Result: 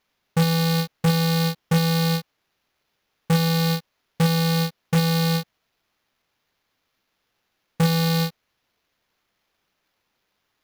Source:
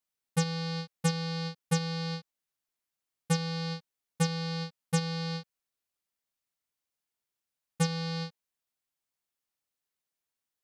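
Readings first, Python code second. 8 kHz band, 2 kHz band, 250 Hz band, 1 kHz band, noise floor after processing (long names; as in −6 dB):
+5.5 dB, +10.0 dB, +11.5 dB, +10.5 dB, −76 dBFS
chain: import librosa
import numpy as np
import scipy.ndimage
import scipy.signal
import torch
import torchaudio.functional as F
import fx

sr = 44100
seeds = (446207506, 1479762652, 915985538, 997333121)

y = fx.fold_sine(x, sr, drive_db=10, ceiling_db=-15.0)
y = fx.sample_hold(y, sr, seeds[0], rate_hz=8500.0, jitter_pct=0)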